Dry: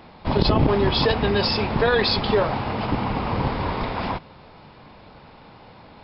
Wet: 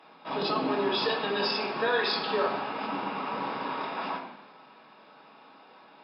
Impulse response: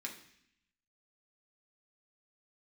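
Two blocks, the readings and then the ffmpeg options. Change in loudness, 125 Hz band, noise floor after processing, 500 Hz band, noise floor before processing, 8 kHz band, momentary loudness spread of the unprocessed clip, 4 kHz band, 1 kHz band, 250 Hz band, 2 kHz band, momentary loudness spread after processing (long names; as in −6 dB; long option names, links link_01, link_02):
−7.5 dB, −22.5 dB, −55 dBFS, −7.5 dB, −47 dBFS, can't be measured, 8 LU, −6.5 dB, −5.0 dB, −10.5 dB, −4.5 dB, 8 LU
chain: -filter_complex "[0:a]highpass=frequency=260:width=0.5412,highpass=frequency=260:width=1.3066[link_01];[1:a]atrim=start_sample=2205,asetrate=29988,aresample=44100[link_02];[link_01][link_02]afir=irnorm=-1:irlink=0,volume=-6.5dB"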